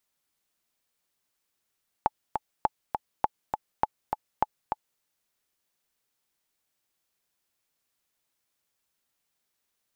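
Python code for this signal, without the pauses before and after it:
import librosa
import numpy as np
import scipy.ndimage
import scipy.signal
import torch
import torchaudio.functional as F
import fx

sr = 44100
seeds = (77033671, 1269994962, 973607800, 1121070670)

y = fx.click_track(sr, bpm=203, beats=2, bars=5, hz=859.0, accent_db=5.5, level_db=-8.5)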